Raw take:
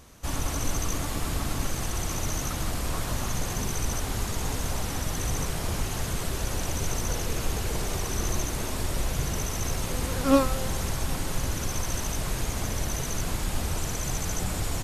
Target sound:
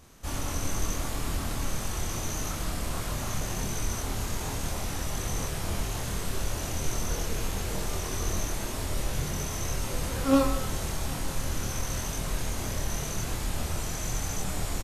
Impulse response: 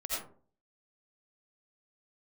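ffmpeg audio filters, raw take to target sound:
-filter_complex "[0:a]asplit=2[a][b];[b]adelay=26,volume=-2dB[c];[a][c]amix=inputs=2:normalize=0,asplit=2[d][e];[1:a]atrim=start_sample=2205,adelay=21[f];[e][f]afir=irnorm=-1:irlink=0,volume=-14.5dB[g];[d][g]amix=inputs=2:normalize=0,volume=-4.5dB"

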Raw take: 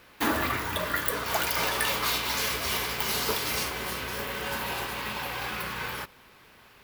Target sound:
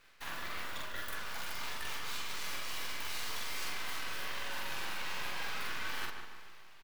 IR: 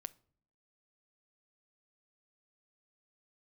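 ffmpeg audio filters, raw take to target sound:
-filter_complex "[0:a]dynaudnorm=f=410:g=7:m=16dB,highpass=1.2k,highshelf=f=5.7k:g=-8.5,areverse,acompressor=threshold=-35dB:ratio=6,areverse,flanger=delay=5:depth=8.6:regen=-42:speed=0.46:shape=sinusoidal,aeval=exprs='max(val(0),0)':c=same,asplit=2[a][b];[b]adelay=45,volume=-2dB[c];[a][c]amix=inputs=2:normalize=0,asplit=2[d][e];[e]adelay=149,lowpass=f=2.5k:p=1,volume=-6dB,asplit=2[f][g];[g]adelay=149,lowpass=f=2.5k:p=1,volume=0.51,asplit=2[h][i];[i]adelay=149,lowpass=f=2.5k:p=1,volume=0.51,asplit=2[j][k];[k]adelay=149,lowpass=f=2.5k:p=1,volume=0.51,asplit=2[l][m];[m]adelay=149,lowpass=f=2.5k:p=1,volume=0.51,asplit=2[n][o];[o]adelay=149,lowpass=f=2.5k:p=1,volume=0.51[p];[f][h][j][l][n][p]amix=inputs=6:normalize=0[q];[d][q]amix=inputs=2:normalize=0,volume=2dB"

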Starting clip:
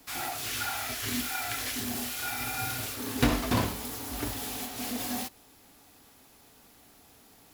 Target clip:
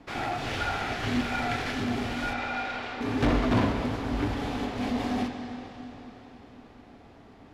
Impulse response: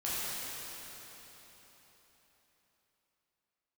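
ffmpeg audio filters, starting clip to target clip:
-filter_complex "[0:a]asplit=2[a][b];[b]acrusher=samples=30:mix=1:aa=0.000001,volume=-9dB[c];[a][c]amix=inputs=2:normalize=0,asoftclip=type=tanh:threshold=-24.5dB,adynamicsmooth=sensitivity=2.5:basefreq=2.5k,asettb=1/sr,asplit=3[d][e][f];[d]atrim=end=2.334[g];[e]atrim=start=2.33:end=3.01,asetpts=PTS-STARTPTS,afade=t=in:d=0.004:c=qsin,afade=t=out:st=0.676:d=0.004:c=qsin,highpass=520,lowpass=4.3k[h];[f]atrim=start=3.006[i];[g][h]acrossfade=d=0.004:c1=hsin:c2=qsin[j];[j][i]acrossfade=d=0.004:c1=qsin:c2=hsin,asplit=2[k][l];[1:a]atrim=start_sample=2205,lowpass=6.3k[m];[l][m]afir=irnorm=-1:irlink=0,volume=-9.5dB[n];[k][n]amix=inputs=2:normalize=0,volume=4dB"

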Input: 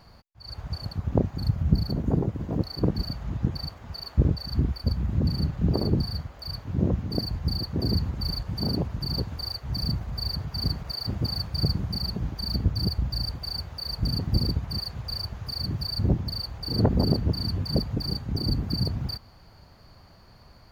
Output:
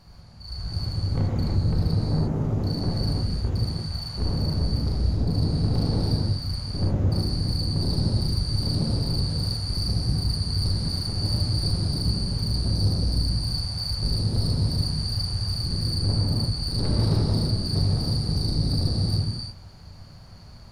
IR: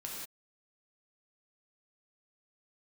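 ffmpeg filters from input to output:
-filter_complex "[0:a]bass=f=250:g=8,treble=f=4k:g=8,aeval=exprs='(tanh(12.6*val(0)+0.35)-tanh(0.35))/12.6':c=same[a];[1:a]atrim=start_sample=2205,asetrate=24255,aresample=44100[b];[a][b]afir=irnorm=-1:irlink=0,volume=-2dB"

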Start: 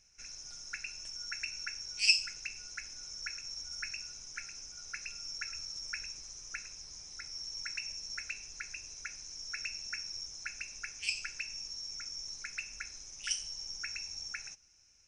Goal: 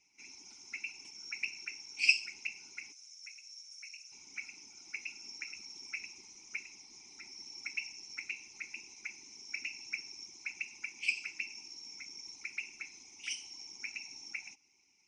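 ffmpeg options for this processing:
-filter_complex "[0:a]crystalizer=i=4.5:c=0,asplit=3[a][b][c];[a]bandpass=f=300:t=q:w=8,volume=0dB[d];[b]bandpass=f=870:t=q:w=8,volume=-6dB[e];[c]bandpass=f=2.24k:t=q:w=8,volume=-9dB[f];[d][e][f]amix=inputs=3:normalize=0,asettb=1/sr,asplit=3[g][h][i];[g]atrim=end=2.924[j];[h]atrim=start=2.92:end=4.12,asetpts=PTS-STARTPTS,afade=t=in:d=0.004:c=qsin,afade=t=out:st=1.196:d=0.004:c=qsin,aderivative[k];[i]atrim=start=4.116[l];[j][k]acrossfade=d=0.004:c1=hsin:c2=qsin[m];[m][l]acrossfade=d=0.004:c1=qsin:c2=hsin,afftfilt=real='hypot(re,im)*cos(2*PI*random(0))':imag='hypot(re,im)*sin(2*PI*random(1))':win_size=512:overlap=0.75,volume=16.5dB"

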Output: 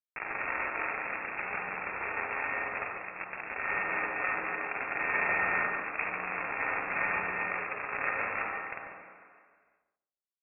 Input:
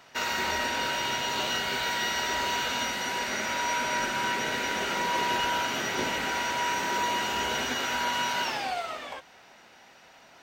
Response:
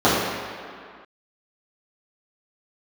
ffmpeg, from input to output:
-filter_complex "[0:a]acrusher=bits=3:mix=0:aa=0.000001,adynamicsmooth=sensitivity=1:basefreq=1k,highpass=f=160:p=1,lowpass=f=2.4k:t=q:w=0.5098,lowpass=f=2.4k:t=q:w=0.6013,lowpass=f=2.4k:t=q:w=0.9,lowpass=f=2.4k:t=q:w=2.563,afreqshift=-2800,asplit=2[a][b];[b]adelay=143,lowpass=f=1k:p=1,volume=-4.5dB,asplit=2[c][d];[d]adelay=143,lowpass=f=1k:p=1,volume=0.29,asplit=2[e][f];[f]adelay=143,lowpass=f=1k:p=1,volume=0.29,asplit=2[g][h];[h]adelay=143,lowpass=f=1k:p=1,volume=0.29[i];[a][c][e][g][i]amix=inputs=5:normalize=0,asplit=2[j][k];[1:a]atrim=start_sample=2205,adelay=45[l];[k][l]afir=irnorm=-1:irlink=0,volume=-26dB[m];[j][m]amix=inputs=2:normalize=0"

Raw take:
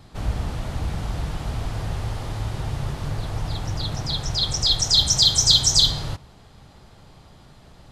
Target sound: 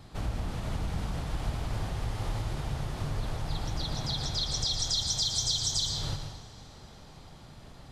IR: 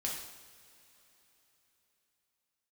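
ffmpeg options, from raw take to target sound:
-filter_complex "[0:a]acompressor=threshold=-27dB:ratio=4,asplit=2[a][b];[1:a]atrim=start_sample=2205,adelay=113[c];[b][c]afir=irnorm=-1:irlink=0,volume=-7dB[d];[a][d]amix=inputs=2:normalize=0,volume=-2.5dB"

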